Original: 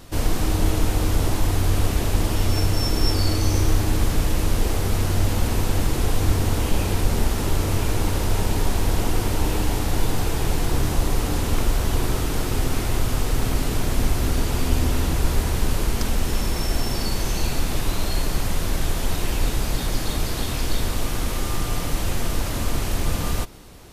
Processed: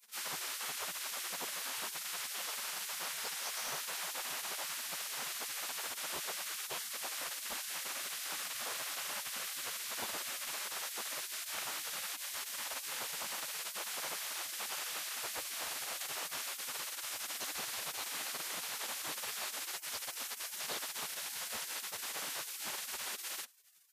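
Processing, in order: spectral gate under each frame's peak -30 dB weak; soft clip -19 dBFS, distortion -33 dB; gain -6 dB

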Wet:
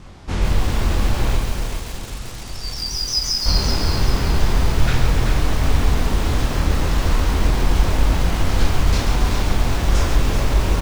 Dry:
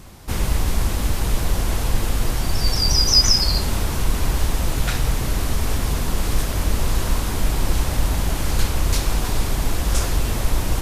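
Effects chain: 1.37–3.46 pre-emphasis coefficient 0.8; chorus 0.37 Hz, depth 3.4 ms; air absorption 94 m; feedback echo 0.384 s, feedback 41%, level -7 dB; on a send at -22 dB: reverb RT60 0.60 s, pre-delay 76 ms; on the sum: lo-fi delay 0.138 s, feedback 55%, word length 6-bit, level -6.5 dB; gain +5 dB

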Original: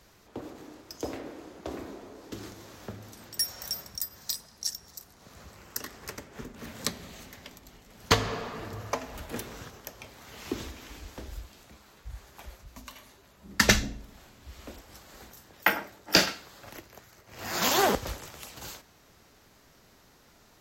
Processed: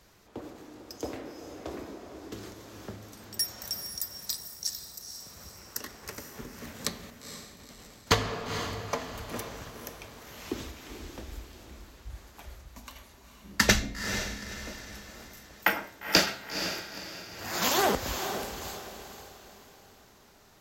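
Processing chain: de-hum 132 Hz, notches 34; 7.1–8.07 negative-ratio compressor -55 dBFS, ratio -0.5; diffused feedback echo 0.474 s, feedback 41%, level -8 dB; gain -1 dB

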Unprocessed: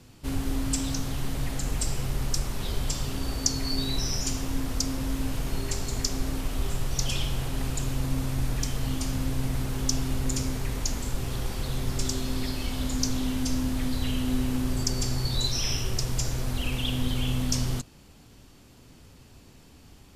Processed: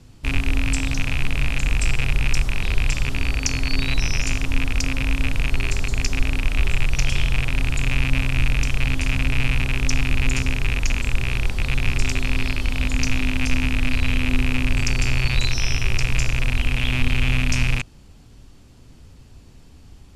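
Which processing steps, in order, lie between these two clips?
rattling part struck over -31 dBFS, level -13 dBFS; LPF 11000 Hz 12 dB/oct; low shelf 110 Hz +11 dB

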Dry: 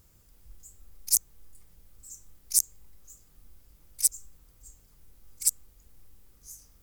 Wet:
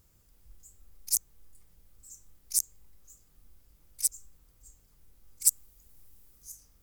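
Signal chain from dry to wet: 5.44–6.52 high shelf 6000 Hz +8 dB; gain -4 dB

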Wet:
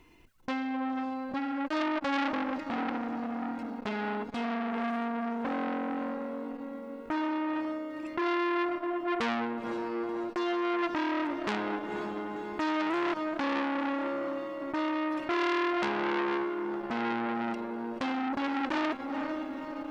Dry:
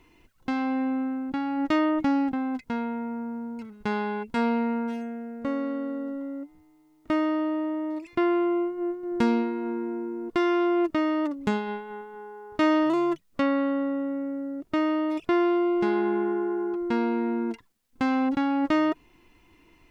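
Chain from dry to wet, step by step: diffused feedback echo 0.511 s, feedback 56%, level -8.5 dB; core saturation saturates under 3100 Hz

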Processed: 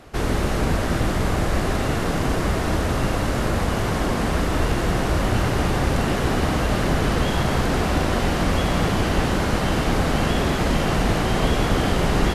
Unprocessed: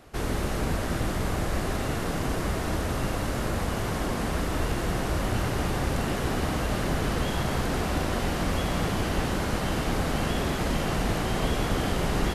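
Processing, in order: high shelf 10000 Hz -7.5 dB; gain +6.5 dB

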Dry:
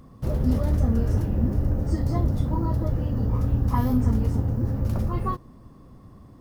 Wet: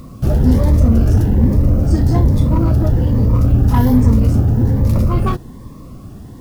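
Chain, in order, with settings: in parallel at -0.5 dB: hard clip -27.5 dBFS, distortion -6 dB; on the sum: bit-crush 10-bit; cascading phaser rising 1.2 Hz; gain +8 dB

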